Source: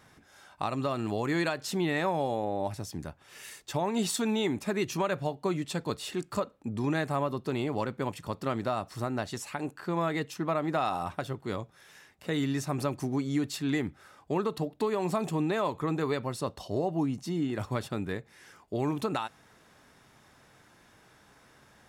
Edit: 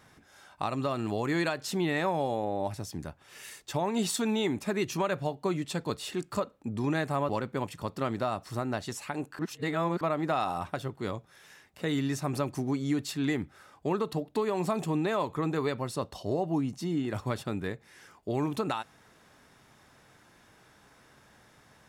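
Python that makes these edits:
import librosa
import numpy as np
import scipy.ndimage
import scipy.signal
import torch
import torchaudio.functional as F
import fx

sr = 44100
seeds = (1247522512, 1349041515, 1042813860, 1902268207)

y = fx.edit(x, sr, fx.cut(start_s=7.29, length_s=0.45),
    fx.reverse_span(start_s=9.84, length_s=0.62), tone=tone)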